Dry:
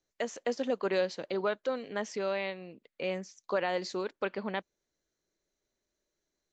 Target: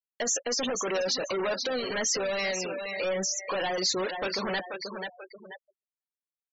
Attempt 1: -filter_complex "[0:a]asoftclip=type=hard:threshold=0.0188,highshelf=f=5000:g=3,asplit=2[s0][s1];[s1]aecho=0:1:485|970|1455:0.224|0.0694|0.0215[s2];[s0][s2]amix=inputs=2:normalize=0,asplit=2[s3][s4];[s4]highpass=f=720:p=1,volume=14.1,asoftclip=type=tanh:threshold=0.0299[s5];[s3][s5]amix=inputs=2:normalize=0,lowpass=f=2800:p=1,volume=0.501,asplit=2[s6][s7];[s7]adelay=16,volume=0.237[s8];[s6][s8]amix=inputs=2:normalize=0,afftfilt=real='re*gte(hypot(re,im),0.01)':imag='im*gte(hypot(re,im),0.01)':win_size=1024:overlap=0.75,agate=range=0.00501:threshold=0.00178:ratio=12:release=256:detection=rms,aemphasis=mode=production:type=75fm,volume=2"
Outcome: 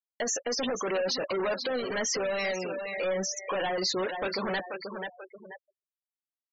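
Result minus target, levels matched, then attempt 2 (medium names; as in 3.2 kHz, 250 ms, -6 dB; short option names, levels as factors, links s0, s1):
8 kHz band -2.5 dB
-filter_complex "[0:a]asoftclip=type=hard:threshold=0.0188,highshelf=f=5000:g=14.5,asplit=2[s0][s1];[s1]aecho=0:1:485|970|1455:0.224|0.0694|0.0215[s2];[s0][s2]amix=inputs=2:normalize=0,asplit=2[s3][s4];[s4]highpass=f=720:p=1,volume=14.1,asoftclip=type=tanh:threshold=0.0299[s5];[s3][s5]amix=inputs=2:normalize=0,lowpass=f=2800:p=1,volume=0.501,asplit=2[s6][s7];[s7]adelay=16,volume=0.237[s8];[s6][s8]amix=inputs=2:normalize=0,afftfilt=real='re*gte(hypot(re,im),0.01)':imag='im*gte(hypot(re,im),0.01)':win_size=1024:overlap=0.75,agate=range=0.00501:threshold=0.00178:ratio=12:release=256:detection=rms,aemphasis=mode=production:type=75fm,volume=2"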